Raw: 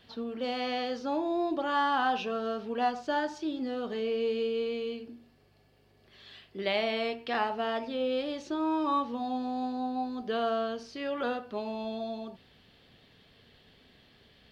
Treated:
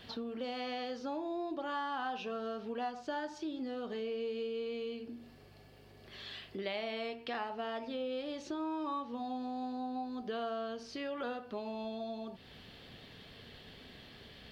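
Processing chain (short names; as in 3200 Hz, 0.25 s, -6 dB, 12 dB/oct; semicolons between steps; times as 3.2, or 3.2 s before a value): compressor 2.5:1, threshold -50 dBFS, peak gain reduction 17 dB; gain +6.5 dB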